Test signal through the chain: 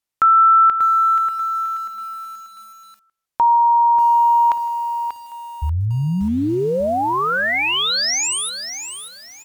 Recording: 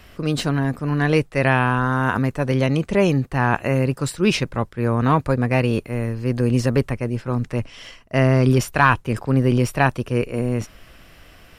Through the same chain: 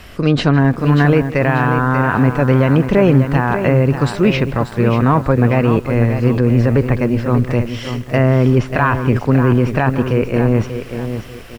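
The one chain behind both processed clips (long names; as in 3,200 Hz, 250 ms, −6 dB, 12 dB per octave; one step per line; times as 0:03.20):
treble cut that deepens with the level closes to 2,100 Hz, closed at −16 dBFS
on a send: single-tap delay 158 ms −23 dB
on the sum: boost into a limiter +11.5 dB
feedback echo at a low word length 588 ms, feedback 35%, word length 6 bits, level −8.5 dB
level −3 dB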